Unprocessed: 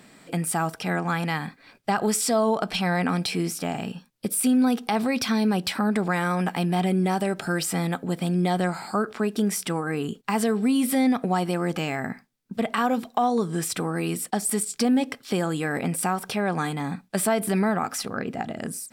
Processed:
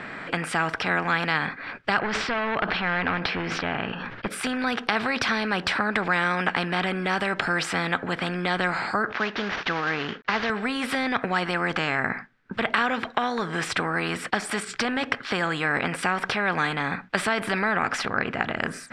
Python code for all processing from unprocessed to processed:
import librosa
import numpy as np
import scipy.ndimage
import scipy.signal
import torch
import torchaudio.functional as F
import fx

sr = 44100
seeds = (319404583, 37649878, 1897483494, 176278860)

y = fx.chain(x, sr, fx.clip_hard(threshold_db=-22.0),
    fx.air_absorb(metres=240.0),
    fx.sustainer(db_per_s=76.0), at=(1.99, 4.28))
y = fx.chain(y, sr, fx.cvsd(bps=32000),
    fx.low_shelf(hz=150.0, db=-11.0), at=(9.12, 10.5))
y = scipy.signal.sosfilt(scipy.signal.butter(2, 2600.0, 'lowpass', fs=sr, output='sos'), y)
y = fx.peak_eq(y, sr, hz=1600.0, db=14.5, octaves=0.88)
y = fx.spectral_comp(y, sr, ratio=2.0)
y = y * 10.0 ** (-2.0 / 20.0)